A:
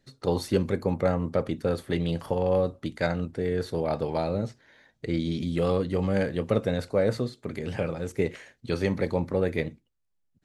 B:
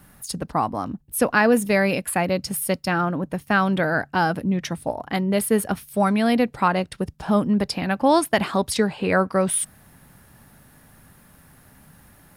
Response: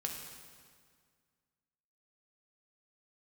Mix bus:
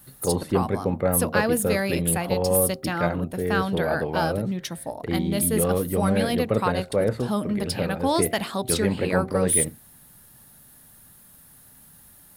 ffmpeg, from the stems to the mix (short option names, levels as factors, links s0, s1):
-filter_complex "[0:a]equalizer=f=5900:w=1.2:g=-14,volume=1.19[s0];[1:a]bandreject=f=76.62:t=h:w=4,bandreject=f=153.24:t=h:w=4,bandreject=f=229.86:t=h:w=4,bandreject=f=306.48:t=h:w=4,bandreject=f=383.1:t=h:w=4,bandreject=f=459.72:t=h:w=4,bandreject=f=536.34:t=h:w=4,bandreject=f=612.96:t=h:w=4,bandreject=f=689.58:t=h:w=4,bandreject=f=766.2:t=h:w=4,aexciter=amount=1.3:drive=9.3:freq=3200,volume=0.501[s1];[s0][s1]amix=inputs=2:normalize=0"